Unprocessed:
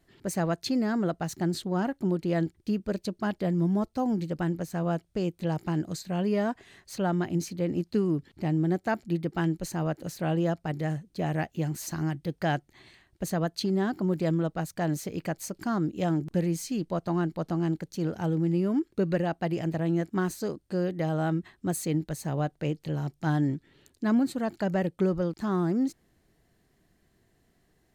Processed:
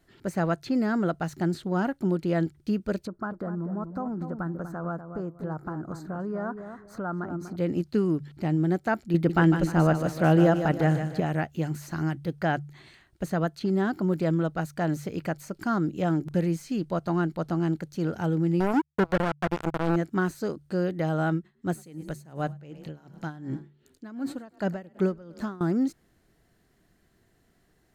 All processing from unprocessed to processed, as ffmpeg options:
ffmpeg -i in.wav -filter_complex "[0:a]asettb=1/sr,asplit=3[link_01][link_02][link_03];[link_01]atrim=end=3.074[link_04];[link_02]atrim=start=3.07:end=7.56,asetpts=PTS-STARTPTS,afade=type=in:duration=0.004:curve=qsin,afade=type=out:start_time=4.486:duration=0.004:curve=qsin,highshelf=frequency=1900:width_type=q:width=3:gain=-13,acompressor=threshold=-31dB:ratio=4:attack=3.2:release=140:knee=1:detection=peak,asplit=2[link_05][link_06];[link_06]adelay=244,lowpass=frequency=1200:poles=1,volume=-8dB,asplit=2[link_07][link_08];[link_08]adelay=244,lowpass=frequency=1200:poles=1,volume=0.26,asplit=2[link_09][link_10];[link_10]adelay=244,lowpass=frequency=1200:poles=1,volume=0.26[link_11];[link_05][link_07][link_09][link_11]amix=inputs=4:normalize=0,atrim=end_sample=198009[link_12];[link_03]atrim=start=7.556[link_13];[link_04][link_12]acrossfade=duration=0.004:curve1=hsin:curve2=qsin[link_14];[link_14][link_13]acrossfade=duration=0.004:curve1=qsin:curve2=hsin,asettb=1/sr,asplit=3[link_15][link_16][link_17];[link_15]atrim=end=9.144[link_18];[link_16]atrim=start=9.14:end=11.2,asetpts=PTS-STARTPTS,afade=type=in:duration=0.004:curve=qsin,afade=type=out:start_time=2.056:duration=0.004:curve=qsin,acontrast=52,aecho=1:1:152|304|456|608:0.355|0.142|0.0568|0.0227,atrim=end_sample=90846[link_19];[link_17]atrim=start=11.196[link_20];[link_18][link_19]acrossfade=duration=0.004:curve1=hsin:curve2=qsin[link_21];[link_21][link_20]acrossfade=duration=0.004:curve1=qsin:curve2=hsin,asettb=1/sr,asplit=3[link_22][link_23][link_24];[link_22]atrim=end=18.604[link_25];[link_23]atrim=start=18.6:end=19.96,asetpts=PTS-STARTPTS,afade=type=in:duration=0.004:curve=qsin,afade=type=out:start_time=1.356:duration=0.004:curve=qsin,acrusher=bits=3:mix=0:aa=0.5,highshelf=frequency=7200:gain=9.5[link_26];[link_24]atrim=start=19.956[link_27];[link_25][link_26]acrossfade=duration=0.004:curve1=hsin:curve2=qsin[link_28];[link_28][link_27]acrossfade=duration=0.004:curve1=qsin:curve2=hsin,asettb=1/sr,asplit=3[link_29][link_30][link_31];[link_29]atrim=end=21.344[link_32];[link_30]atrim=start=21.34:end=25.61,asetpts=PTS-STARTPTS,afade=type=in:duration=0.004:curve=qsin,afade=type=out:start_time=4.266:duration=0.004:curve=qsin,asplit=5[link_33][link_34][link_35][link_36][link_37];[link_34]adelay=103,afreqshift=31,volume=-19dB[link_38];[link_35]adelay=206,afreqshift=62,volume=-25.7dB[link_39];[link_36]adelay=309,afreqshift=93,volume=-32.5dB[link_40];[link_37]adelay=412,afreqshift=124,volume=-39.2dB[link_41];[link_33][link_38][link_39][link_40][link_41]amix=inputs=5:normalize=0,atrim=end_sample=188307,aeval=exprs='val(0)*pow(10,-21*(0.5-0.5*cos(2*PI*2.7*n/s))/20)':channel_layout=same[link_42];[link_31]atrim=start=25.606[link_43];[link_32][link_42]acrossfade=duration=0.004:curve1=hsin:curve2=qsin[link_44];[link_44][link_43]acrossfade=duration=0.004:curve1=qsin:curve2=hsin,bandreject=frequency=72.89:width_type=h:width=4,bandreject=frequency=145.78:width_type=h:width=4,acrossover=split=2500[link_45][link_46];[link_46]acompressor=threshold=-46dB:ratio=4:attack=1:release=60[link_47];[link_45][link_47]amix=inputs=2:normalize=0,equalizer=frequency=1400:width=5.8:gain=6,volume=1.5dB" out.wav

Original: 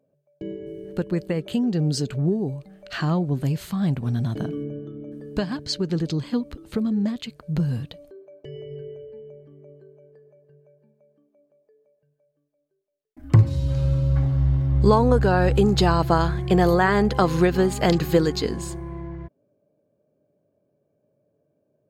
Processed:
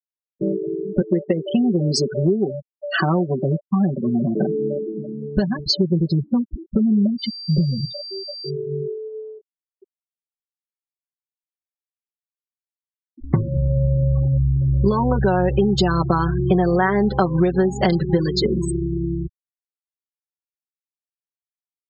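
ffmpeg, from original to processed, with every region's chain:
ffmpeg -i in.wav -filter_complex "[0:a]asettb=1/sr,asplit=3[link_01][link_02][link_03];[link_01]atrim=end=1.014[link_04];[link_02]atrim=start=1.01:end=4.98,asetpts=PTS-STARTPTS,afade=type=in:duration=0.004:curve=qsin,afade=type=out:start_time=3.966:duration=0.004:curve=qsin,highpass=250,equalizer=frequency=350:width_type=o:width=2.4:gain=4[link_05];[link_03]atrim=start=4.976[link_06];[link_04][link_05]acrossfade=duration=0.004:curve1=hsin:curve2=qsin[link_07];[link_07][link_06]acrossfade=duration=0.004:curve1=qsin:curve2=hsin,asettb=1/sr,asplit=3[link_08][link_09][link_10];[link_08]atrim=end=7.184[link_11];[link_09]atrim=start=7.18:end=8.5,asetpts=PTS-STARTPTS,afade=type=in:duration=0.004:curve=qsin,afade=type=out:start_time=1.316:duration=0.004:curve=qsin,lowshelf=frequency=190:gain=-4,aeval=exprs='val(0)+0.00794*sin(2*PI*4700*n/s)':channel_layout=same,bandreject=frequency=60:width_type=h:width=6,bandreject=frequency=120:width_type=h:width=6[link_12];[link_10]atrim=start=8.496[link_13];[link_11][link_12]acrossfade=duration=0.004:curve1=hsin:curve2=qsin[link_14];[link_14][link_13]acrossfade=duration=0.004:curve1=qsin:curve2=hsin,afftfilt=real='re*gte(hypot(re,im),0.0562)':imag='im*gte(hypot(re,im),0.0562)':win_size=1024:overlap=0.75,aecho=1:1:5.3:0.96,acompressor=threshold=-24dB:ratio=5,volume=8.5dB" out.wav

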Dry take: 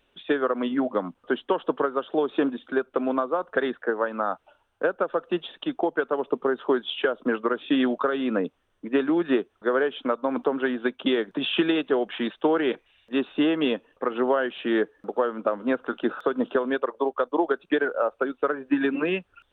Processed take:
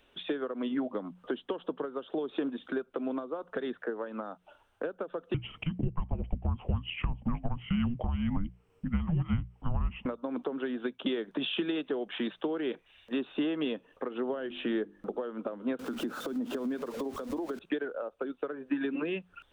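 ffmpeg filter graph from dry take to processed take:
ffmpeg -i in.wav -filter_complex "[0:a]asettb=1/sr,asplit=3[link_01][link_02][link_03];[link_01]atrim=end=5.344[link_04];[link_02]atrim=start=5.34:end=10.06,asetpts=PTS-STARTPTS,afade=type=in:duration=0.004:curve=qsin,afade=type=out:start_time=4.716:duration=0.004:curve=qsin,afreqshift=-480,lowshelf=frequency=180:gain=7[link_05];[link_03]atrim=start=10.056[link_06];[link_04][link_05]acrossfade=duration=0.004:curve1=hsin:curve2=qsin[link_07];[link_07][link_06]acrossfade=duration=0.004:curve1=qsin:curve2=hsin,asettb=1/sr,asplit=3[link_08][link_09][link_10];[link_08]atrim=end=14.294[link_11];[link_09]atrim=start=14.29:end=15.18,asetpts=PTS-STARTPTS,afade=type=in:duration=0.004:curve=qsin,afade=type=out:start_time=0.886:duration=0.004:curve=qsin,lowshelf=frequency=140:gain=11.5,bandreject=frequency=50:width_type=h:width=6,bandreject=frequency=100:width_type=h:width=6,bandreject=frequency=150:width_type=h:width=6,bandreject=frequency=200:width_type=h:width=6,bandreject=frequency=250:width_type=h:width=6,bandreject=frequency=300:width_type=h:width=6,bandreject=frequency=350:width_type=h:width=6[link_12];[link_10]atrim=start=15.176[link_13];[link_11][link_12]acrossfade=duration=0.004:curve1=hsin:curve2=qsin[link_14];[link_14][link_13]acrossfade=duration=0.004:curve1=qsin:curve2=hsin,asettb=1/sr,asplit=3[link_15][link_16][link_17];[link_15]atrim=end=15.794[link_18];[link_16]atrim=start=15.79:end=17.59,asetpts=PTS-STARTPTS,afade=type=in:duration=0.004:curve=qsin,afade=type=out:start_time=1.796:duration=0.004:curve=qsin,aeval=exprs='val(0)+0.5*0.0158*sgn(val(0))':channel_layout=same,equalizer=frequency=240:width=1.4:gain=12,acompressor=threshold=-28dB:ratio=5:attack=3.2:release=140:knee=1:detection=peak[link_19];[link_17]atrim=start=17.586[link_20];[link_18][link_19]acrossfade=duration=0.004:curve1=hsin:curve2=qsin[link_21];[link_21][link_20]acrossfade=duration=0.004:curve1=qsin:curve2=hsin,acompressor=threshold=-35dB:ratio=2.5,bandreject=frequency=60:width_type=h:width=6,bandreject=frequency=120:width_type=h:width=6,bandreject=frequency=180:width_type=h:width=6,acrossover=split=480|3000[link_22][link_23][link_24];[link_23]acompressor=threshold=-43dB:ratio=6[link_25];[link_22][link_25][link_24]amix=inputs=3:normalize=0,volume=2.5dB" out.wav

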